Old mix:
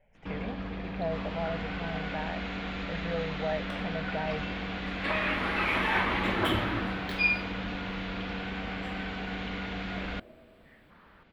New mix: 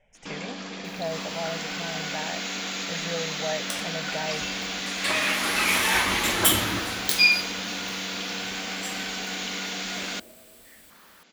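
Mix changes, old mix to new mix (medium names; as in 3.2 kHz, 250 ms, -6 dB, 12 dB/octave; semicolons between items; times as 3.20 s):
first sound: add high-pass 190 Hz 24 dB/octave; master: remove distance through air 480 m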